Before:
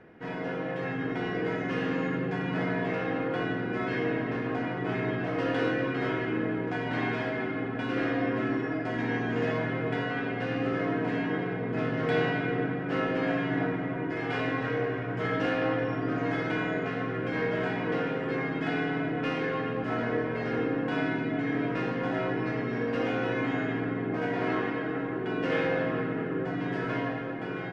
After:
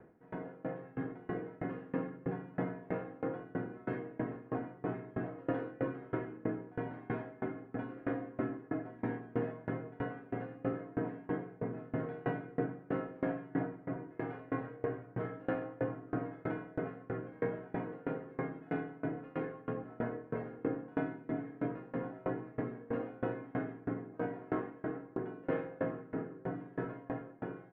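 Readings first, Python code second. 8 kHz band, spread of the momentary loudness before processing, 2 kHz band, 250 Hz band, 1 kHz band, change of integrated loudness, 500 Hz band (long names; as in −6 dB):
can't be measured, 4 LU, −16.0 dB, −9.0 dB, −10.5 dB, −9.5 dB, −9.0 dB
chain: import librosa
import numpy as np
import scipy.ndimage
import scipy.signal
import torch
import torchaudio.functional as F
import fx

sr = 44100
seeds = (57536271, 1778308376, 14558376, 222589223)

y = scipy.signal.sosfilt(scipy.signal.butter(2, 1200.0, 'lowpass', fs=sr, output='sos'), x)
y = fx.tremolo_decay(y, sr, direction='decaying', hz=3.1, depth_db=26)
y = y * 10.0 ** (-1.0 / 20.0)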